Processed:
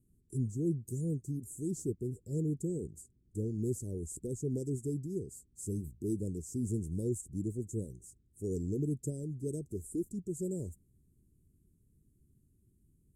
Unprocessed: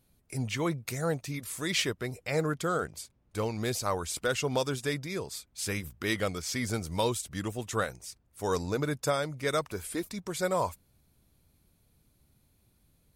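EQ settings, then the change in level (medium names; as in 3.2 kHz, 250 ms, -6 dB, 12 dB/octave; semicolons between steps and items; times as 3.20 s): Chebyshev band-stop 390–7400 Hz, order 4; distance through air 53 m; 0.0 dB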